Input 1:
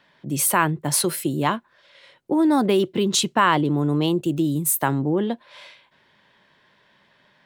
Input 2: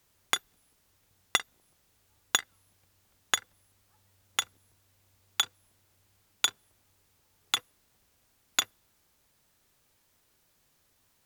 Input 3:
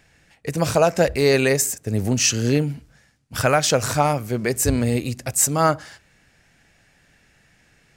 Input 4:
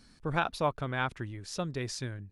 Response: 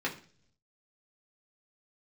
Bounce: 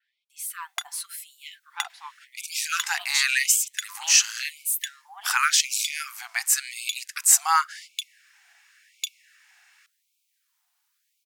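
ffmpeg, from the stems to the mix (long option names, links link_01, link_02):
-filter_complex "[0:a]aecho=1:1:5.1:0.49,acontrast=23,adynamicequalizer=threshold=0.0355:dfrequency=4100:dqfactor=0.7:tfrequency=4100:tqfactor=0.7:attack=5:release=100:ratio=0.375:range=2:mode=boostabove:tftype=highshelf,volume=-13dB,afade=type=in:start_time=0.95:duration=0.52:silence=0.375837[link_01];[1:a]adelay=450,volume=-3.5dB[link_02];[2:a]highpass=890,adelay=1900,volume=2dB[link_03];[3:a]adelay=1400,volume=-8dB[link_04];[link_01][link_02][link_03][link_04]amix=inputs=4:normalize=0,equalizer=frequency=590:width=4.3:gain=8,afftfilt=real='re*gte(b*sr/1024,670*pow(2200/670,0.5+0.5*sin(2*PI*0.91*pts/sr)))':imag='im*gte(b*sr/1024,670*pow(2200/670,0.5+0.5*sin(2*PI*0.91*pts/sr)))':win_size=1024:overlap=0.75"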